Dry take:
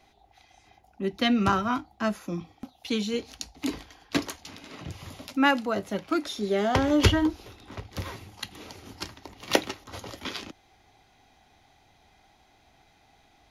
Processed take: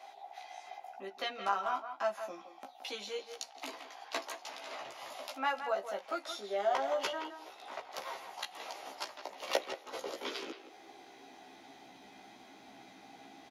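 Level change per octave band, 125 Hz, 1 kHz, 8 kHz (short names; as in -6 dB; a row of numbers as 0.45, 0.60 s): under -30 dB, -5.0 dB, -8.5 dB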